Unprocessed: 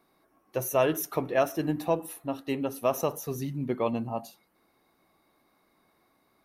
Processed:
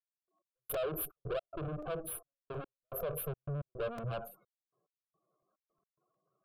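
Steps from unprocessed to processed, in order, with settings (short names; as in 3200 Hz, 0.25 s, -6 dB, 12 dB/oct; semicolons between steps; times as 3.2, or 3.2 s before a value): gate -58 dBFS, range -14 dB; band shelf 3700 Hz -12 dB; spectral gate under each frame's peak -10 dB strong; resonant low shelf 100 Hz -11 dB, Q 3; compressor 12:1, threshold -28 dBFS, peak gain reduction 9 dB; limiter -27.5 dBFS, peak gain reduction 10 dB; tube stage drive 42 dB, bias 0.8; step gate "..x..xxx.x.xxxxx" 108 bpm -60 dB; fixed phaser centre 1300 Hz, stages 8; crackling interface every 0.36 s, samples 128, repeat, from 0.38; gain +11 dB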